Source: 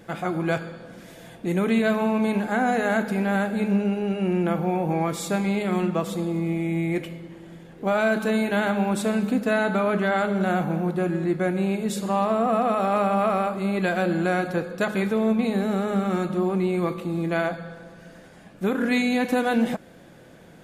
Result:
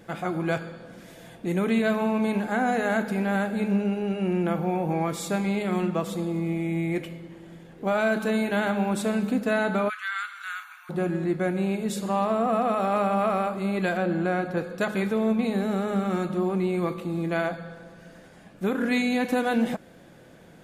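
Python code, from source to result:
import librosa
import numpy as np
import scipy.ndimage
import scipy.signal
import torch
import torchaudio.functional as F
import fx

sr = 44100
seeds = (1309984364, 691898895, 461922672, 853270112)

y = fx.steep_highpass(x, sr, hz=1200.0, slope=48, at=(9.88, 10.89), fade=0.02)
y = fx.high_shelf(y, sr, hz=3200.0, db=-9.5, at=(13.97, 14.57))
y = y * 10.0 ** (-2.0 / 20.0)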